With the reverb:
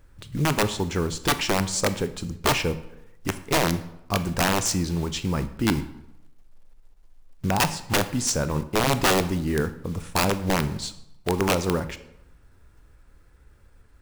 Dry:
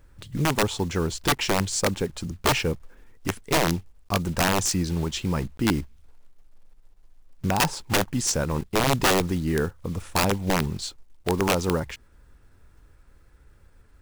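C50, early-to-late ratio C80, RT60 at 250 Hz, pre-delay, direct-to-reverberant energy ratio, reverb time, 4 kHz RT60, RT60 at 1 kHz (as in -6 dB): 14.5 dB, 17.0 dB, 0.85 s, 21 ms, 11.5 dB, 0.85 s, 0.60 s, 0.85 s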